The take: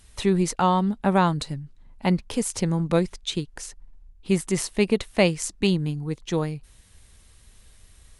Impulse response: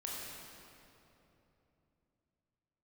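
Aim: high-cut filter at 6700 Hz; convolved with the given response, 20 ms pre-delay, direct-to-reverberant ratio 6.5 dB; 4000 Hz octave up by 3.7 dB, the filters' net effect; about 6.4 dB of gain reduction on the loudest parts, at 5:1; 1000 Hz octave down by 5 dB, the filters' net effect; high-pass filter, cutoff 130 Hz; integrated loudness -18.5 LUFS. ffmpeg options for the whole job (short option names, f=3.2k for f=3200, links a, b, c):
-filter_complex "[0:a]highpass=130,lowpass=6.7k,equalizer=f=1k:t=o:g=-6.5,equalizer=f=4k:t=o:g=5.5,acompressor=threshold=-23dB:ratio=5,asplit=2[a][b];[1:a]atrim=start_sample=2205,adelay=20[c];[b][c]afir=irnorm=-1:irlink=0,volume=-7.5dB[d];[a][d]amix=inputs=2:normalize=0,volume=10.5dB"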